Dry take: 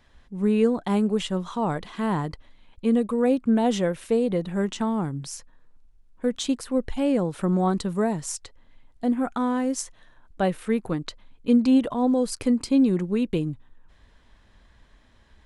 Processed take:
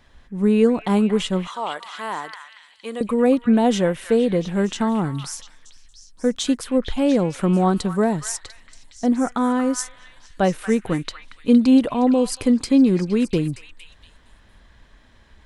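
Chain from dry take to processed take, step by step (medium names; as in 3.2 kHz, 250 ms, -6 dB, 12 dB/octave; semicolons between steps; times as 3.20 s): 1.47–3.01 s: Bessel high-pass 870 Hz, order 2; repeats whose band climbs or falls 232 ms, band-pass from 1.7 kHz, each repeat 0.7 oct, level -5 dB; trim +4.5 dB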